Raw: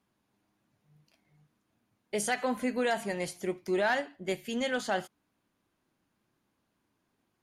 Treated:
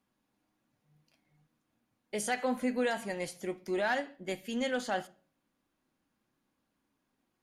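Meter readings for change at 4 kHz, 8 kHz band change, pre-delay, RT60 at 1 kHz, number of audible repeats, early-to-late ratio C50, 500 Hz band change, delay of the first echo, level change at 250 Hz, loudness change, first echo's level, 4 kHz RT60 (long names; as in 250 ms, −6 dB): −3.0 dB, −3.0 dB, 4 ms, 0.40 s, no echo audible, 22.0 dB, −2.5 dB, no echo audible, −1.0 dB, −2.0 dB, no echo audible, 0.40 s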